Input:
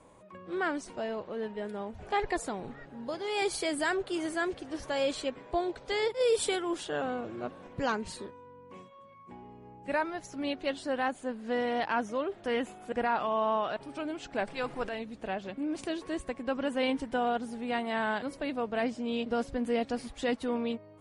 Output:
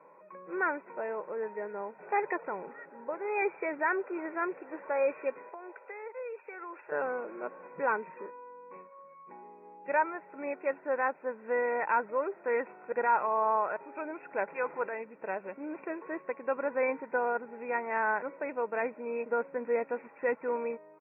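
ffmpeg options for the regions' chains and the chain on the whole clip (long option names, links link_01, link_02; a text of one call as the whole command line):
ffmpeg -i in.wav -filter_complex "[0:a]asettb=1/sr,asplit=3[link_01][link_02][link_03];[link_01]atrim=end=5.494[link_04];[link_02]atrim=start=5.49:end=6.92,asetpts=PTS-STARTPTS,afade=type=in:duration=0.004:curve=qsin,afade=type=out:start_time=1.426:duration=0.004:curve=qsin,highpass=560,equalizer=frequency=1000:width=0.59:gain=-3,acompressor=threshold=-38dB:ratio=12:attack=3.2:release=140:knee=1:detection=peak[link_05];[link_03]atrim=start=6.916[link_06];[link_04][link_05]acrossfade=duration=0.004:curve1=hsin:curve2=qsin[link_07];[link_07][link_06]acrossfade=duration=0.004:curve1=qsin:curve2=hsin,afftfilt=real='re*between(b*sr/4096,140,2700)':imag='im*between(b*sr/4096,140,2700)':win_size=4096:overlap=0.75,equalizer=frequency=1100:width=0.37:gain=10.5,aecho=1:1:2.1:0.5,volume=-8.5dB" out.wav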